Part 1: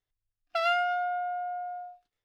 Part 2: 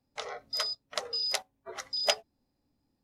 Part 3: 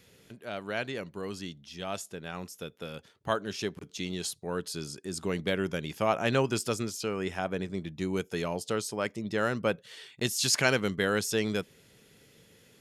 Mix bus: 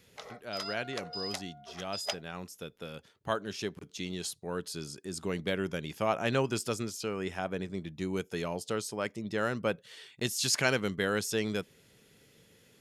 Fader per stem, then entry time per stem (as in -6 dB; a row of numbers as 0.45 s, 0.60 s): -19.5 dB, -8.0 dB, -2.5 dB; 0.00 s, 0.00 s, 0.00 s